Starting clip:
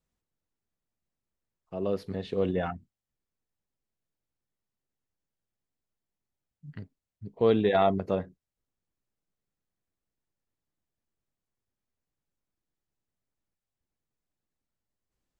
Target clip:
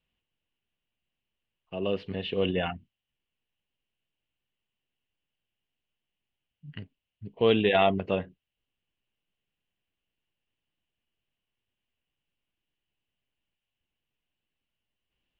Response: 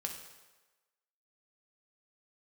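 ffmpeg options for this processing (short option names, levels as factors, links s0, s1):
-af "lowpass=f=2900:t=q:w=7.6,bandreject=f=1300:w=14"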